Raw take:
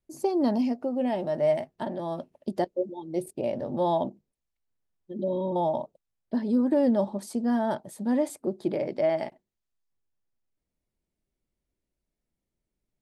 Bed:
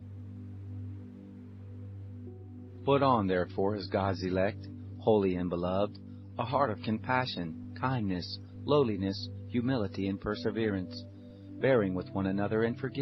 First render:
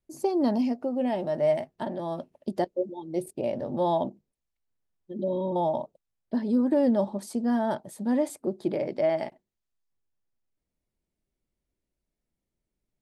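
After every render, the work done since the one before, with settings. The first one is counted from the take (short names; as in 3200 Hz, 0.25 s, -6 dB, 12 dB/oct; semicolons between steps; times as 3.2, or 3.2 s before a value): nothing audible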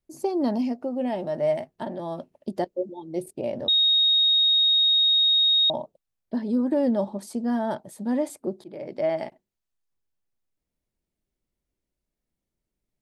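3.68–5.7 bleep 3740 Hz -16.5 dBFS; 8.64–9.06 fade in, from -20.5 dB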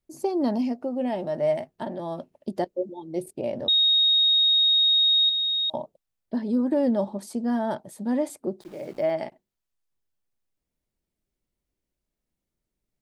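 5.29–5.74 differentiator; 8.61–9.11 sample gate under -48 dBFS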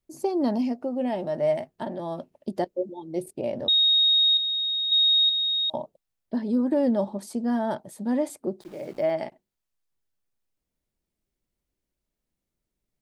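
4.37–4.92 air absorption 270 m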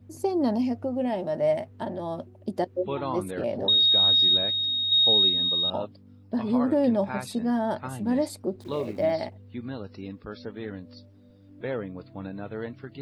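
add bed -5.5 dB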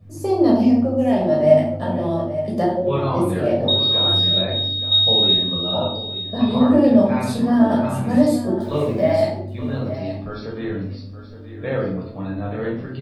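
echo 0.873 s -12.5 dB; shoebox room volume 850 m³, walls furnished, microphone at 6 m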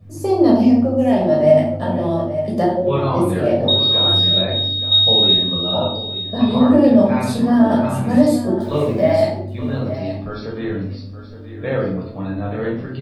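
gain +2.5 dB; limiter -2 dBFS, peak gain reduction 2.5 dB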